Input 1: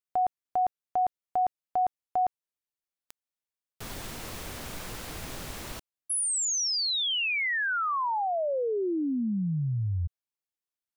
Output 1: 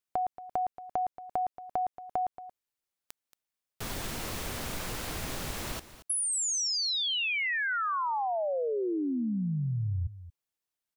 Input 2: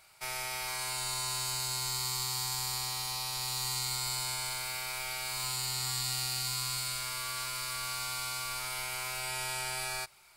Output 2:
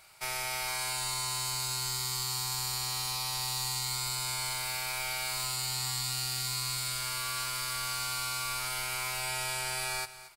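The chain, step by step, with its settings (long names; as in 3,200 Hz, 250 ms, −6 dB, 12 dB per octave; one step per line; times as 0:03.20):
downward compressor 6 to 1, threshold −32 dBFS
single-tap delay 228 ms −15 dB
level +3 dB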